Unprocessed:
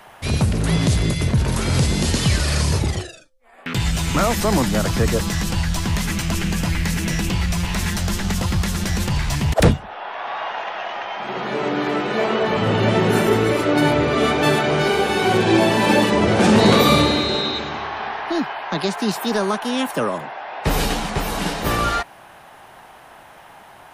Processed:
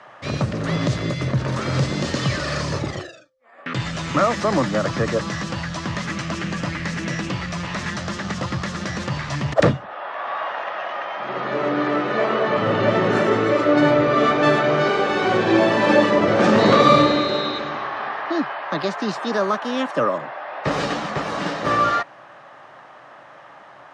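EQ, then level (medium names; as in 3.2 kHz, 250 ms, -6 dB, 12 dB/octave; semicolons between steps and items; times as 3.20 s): cabinet simulation 130–6500 Hz, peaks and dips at 130 Hz +8 dB, 300 Hz +6 dB, 570 Hz +10 dB, 1.2 kHz +10 dB, 1.8 kHz +6 dB; -5.0 dB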